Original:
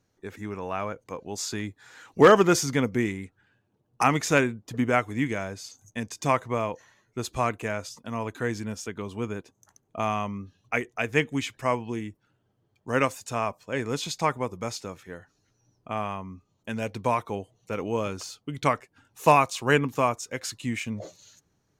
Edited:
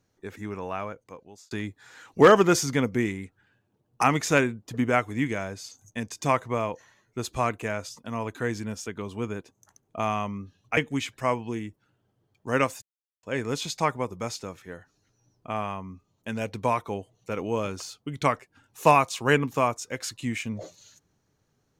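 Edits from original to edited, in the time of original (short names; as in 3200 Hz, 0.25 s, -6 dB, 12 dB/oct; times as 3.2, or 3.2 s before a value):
0.61–1.51 fade out
10.77–11.18 cut
13.23–13.64 mute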